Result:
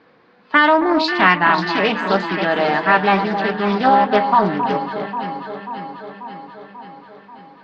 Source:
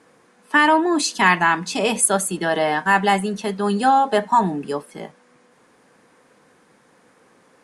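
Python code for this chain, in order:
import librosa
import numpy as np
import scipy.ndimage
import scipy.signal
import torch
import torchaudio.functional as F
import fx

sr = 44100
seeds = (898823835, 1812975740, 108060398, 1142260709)

p1 = scipy.signal.sosfilt(scipy.signal.ellip(4, 1.0, 60, 4500.0, 'lowpass', fs=sr, output='sos'), x)
p2 = p1 + fx.echo_alternate(p1, sr, ms=269, hz=1200.0, feedback_pct=79, wet_db=-7.0, dry=0)
p3 = fx.doppler_dist(p2, sr, depth_ms=0.24)
y = p3 * librosa.db_to_amplitude(2.5)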